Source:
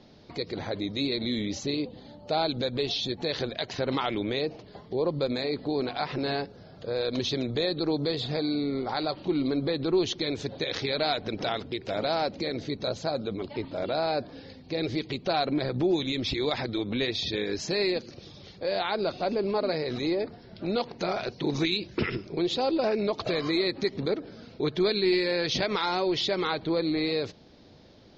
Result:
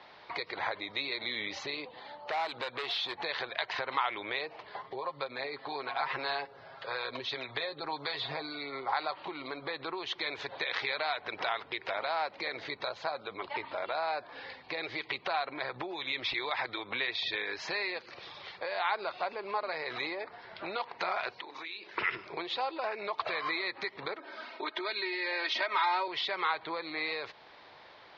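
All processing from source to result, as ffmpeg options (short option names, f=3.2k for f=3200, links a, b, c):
-filter_complex "[0:a]asettb=1/sr,asplit=3[a][b][c];[a]atrim=end=1.914[d];[b]atrim=start=1.91:end=3.15,asetpts=PTS-STARTPTS,afade=t=in:d=0.004:c=qsin,afade=t=out:st=1.236:d=0.004:c=qsin,lowshelf=f=96:g=-9,asoftclip=type=hard:threshold=-28dB[e];[c]atrim=start=3.146[f];[d][e]acrossfade=d=0.004:c1=hsin:c2=qsin[g];[g][f]acrossfade=d=0.004:c1=qsin:c2=hsin,asettb=1/sr,asplit=3[h][i][j];[h]atrim=end=4.824[k];[i]atrim=start=4.82:end=8.93,asetpts=PTS-STARTPTS,afade=t=in:d=0.004:c=qsin,afade=t=out:st=4.106:d=0.004:c=qsin,acrossover=split=720[l][m];[l]aeval=exprs='val(0)*(1-0.5/2+0.5/2*cos(2*PI*1.7*n/s))':c=same[n];[m]aeval=exprs='val(0)*(1-0.5/2-0.5/2*cos(2*PI*1.7*n/s))':c=same[o];[n][o]amix=inputs=2:normalize=0,aecho=1:1:7.4:0.6,atrim=end_sample=181251[p];[j]atrim=start=8.926[q];[k][p]acrossfade=d=0.004:c1=hsin:c2=qsin[r];[r][q]acrossfade=d=0.004:c1=qsin:c2=hsin,asettb=1/sr,asplit=3[s][t][u];[s]atrim=end=21.404[v];[t]atrim=start=21.4:end=21.95,asetpts=PTS-STARTPTS,afade=t=in:d=0.004:c=qsin,afade=t=out:st=0.546:d=0.004:c=qsin,highpass=f=210:w=0.5412,highpass=f=210:w=1.3066,bandreject=f=60:t=h:w=6,bandreject=f=120:t=h:w=6,bandreject=f=180:t=h:w=6,bandreject=f=240:t=h:w=6,bandreject=f=300:t=h:w=6,bandreject=f=360:t=h:w=6,bandreject=f=420:t=h:w=6,bandreject=f=480:t=h:w=6,acompressor=threshold=-42dB:ratio=8:attack=3.2:release=140:knee=1:detection=peak[w];[u]atrim=start=21.946[x];[v][w]acrossfade=d=0.004:c1=hsin:c2=qsin[y];[y][x]acrossfade=d=0.004:c1=qsin:c2=hsin,asettb=1/sr,asplit=3[z][aa][ab];[z]atrim=end=24.194[ac];[aa]atrim=start=24.19:end=26.08,asetpts=PTS-STARTPTS,afade=t=in:d=0.004:c=qsin,afade=t=out:st=1.886:d=0.004:c=qsin,highpass=f=210:w=0.5412,highpass=f=210:w=1.3066,aecho=1:1:3.2:0.82,atrim=end_sample=83349[ad];[ab]atrim=start=26.076[ae];[ac][ad]acrossfade=d=0.004:c1=hsin:c2=qsin[af];[af][ae]acrossfade=d=0.004:c1=qsin:c2=hsin,acrossover=split=310 4600:gain=0.126 1 0.0891[ag][ah][ai];[ag][ah][ai]amix=inputs=3:normalize=0,acompressor=threshold=-37dB:ratio=4,equalizer=f=125:t=o:w=1:g=4,equalizer=f=250:t=o:w=1:g=-8,equalizer=f=500:t=o:w=1:g=-3,equalizer=f=1k:t=o:w=1:g=12,equalizer=f=2k:t=o:w=1:g=9,equalizer=f=4k:t=o:w=1:g=3"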